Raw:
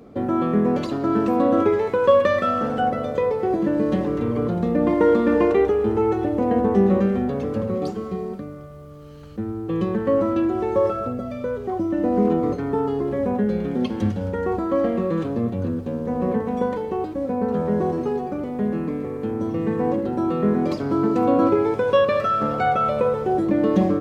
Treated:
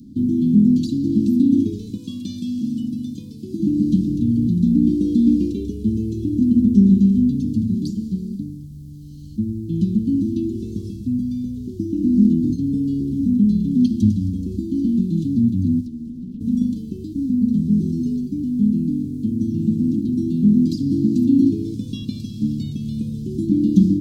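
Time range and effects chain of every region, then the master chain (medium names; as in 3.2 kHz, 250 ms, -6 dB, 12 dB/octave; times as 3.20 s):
1.97–3.60 s: high-pass 220 Hz 6 dB/octave + band-stop 420 Hz, Q 5.2
15.81–16.41 s: high-pass 130 Hz 6 dB/octave + compression 10:1, threshold -31 dBFS + loudspeaker Doppler distortion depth 0.69 ms
whole clip: inverse Chebyshev band-stop 520–2000 Hz, stop band 50 dB; peaking EQ 270 Hz +7 dB 0.56 oct; trim +5.5 dB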